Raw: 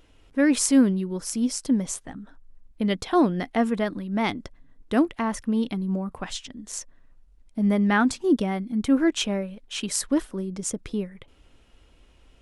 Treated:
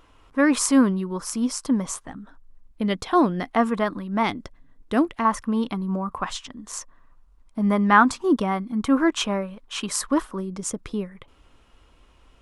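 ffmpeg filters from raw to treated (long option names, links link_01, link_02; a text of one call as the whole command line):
ffmpeg -i in.wav -af "asetnsamples=nb_out_samples=441:pad=0,asendcmd='2.07 equalizer g 6;3.5 equalizer g 12.5;4.23 equalizer g 4;5.25 equalizer g 14.5;10.4 equalizer g 8.5',equalizer=frequency=1100:width_type=o:width=0.74:gain=14.5" out.wav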